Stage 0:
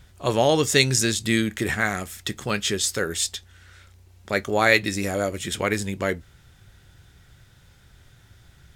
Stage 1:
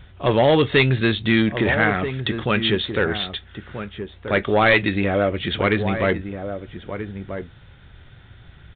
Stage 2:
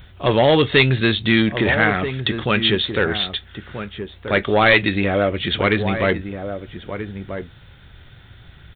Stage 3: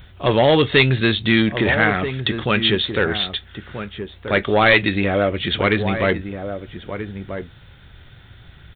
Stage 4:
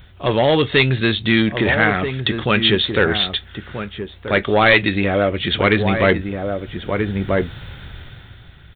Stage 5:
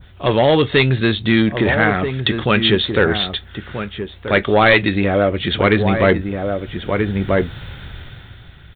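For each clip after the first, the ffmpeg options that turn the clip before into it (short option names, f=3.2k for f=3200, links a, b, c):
-filter_complex "[0:a]aresample=8000,asoftclip=type=tanh:threshold=-15.5dB,aresample=44100,asplit=2[a][b];[b]adelay=1283,volume=-9dB,highshelf=f=4k:g=-28.9[c];[a][c]amix=inputs=2:normalize=0,volume=6.5dB"
-af "aemphasis=mode=production:type=50fm,volume=1.5dB"
-af anull
-af "dynaudnorm=f=150:g=13:m=14dB,volume=-1dB"
-af "adynamicequalizer=threshold=0.0251:dfrequency=2800:dqfactor=0.86:tfrequency=2800:tqfactor=0.86:attack=5:release=100:ratio=0.375:range=2.5:mode=cutabove:tftype=bell,volume=2dB"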